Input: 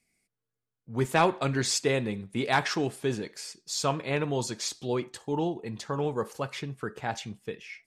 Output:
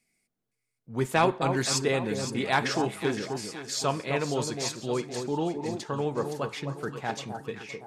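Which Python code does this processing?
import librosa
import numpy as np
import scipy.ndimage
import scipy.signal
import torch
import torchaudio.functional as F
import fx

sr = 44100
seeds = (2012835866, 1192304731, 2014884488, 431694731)

y = fx.peak_eq(x, sr, hz=63.0, db=-10.0, octaves=0.82)
y = fx.echo_alternate(y, sr, ms=258, hz=1100.0, feedback_pct=65, wet_db=-6.0)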